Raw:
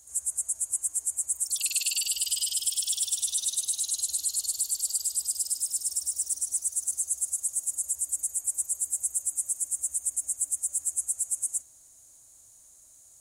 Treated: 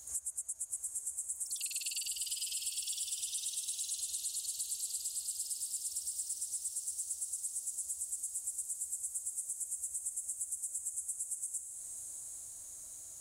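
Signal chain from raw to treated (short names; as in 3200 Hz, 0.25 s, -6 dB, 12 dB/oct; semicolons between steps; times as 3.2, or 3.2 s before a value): compressor, threshold -40 dBFS, peak gain reduction 17 dB; on a send: diffused feedback echo 0.802 s, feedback 52%, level -6.5 dB; on the sum: gain +3.5 dB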